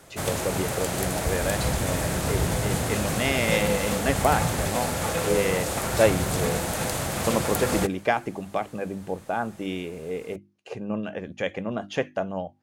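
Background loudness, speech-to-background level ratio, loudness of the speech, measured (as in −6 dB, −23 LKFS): −26.5 LKFS, −2.5 dB, −29.0 LKFS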